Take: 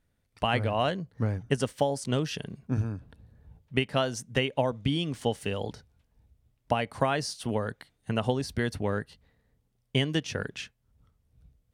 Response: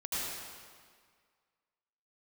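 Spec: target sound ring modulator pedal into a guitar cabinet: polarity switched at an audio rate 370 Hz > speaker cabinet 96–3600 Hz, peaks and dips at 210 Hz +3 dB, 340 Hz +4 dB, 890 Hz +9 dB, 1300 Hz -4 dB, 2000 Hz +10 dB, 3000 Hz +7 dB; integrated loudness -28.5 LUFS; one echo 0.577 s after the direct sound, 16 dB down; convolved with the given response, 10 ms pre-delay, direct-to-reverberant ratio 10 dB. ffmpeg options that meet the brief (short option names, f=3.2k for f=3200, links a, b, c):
-filter_complex "[0:a]aecho=1:1:577:0.158,asplit=2[a][b];[1:a]atrim=start_sample=2205,adelay=10[c];[b][c]afir=irnorm=-1:irlink=0,volume=-15dB[d];[a][d]amix=inputs=2:normalize=0,aeval=exprs='val(0)*sgn(sin(2*PI*370*n/s))':c=same,highpass=96,equalizer=f=210:t=q:w=4:g=3,equalizer=f=340:t=q:w=4:g=4,equalizer=f=890:t=q:w=4:g=9,equalizer=f=1.3k:t=q:w=4:g=-4,equalizer=f=2k:t=q:w=4:g=10,equalizer=f=3k:t=q:w=4:g=7,lowpass=f=3.6k:w=0.5412,lowpass=f=3.6k:w=1.3066,volume=-2.5dB"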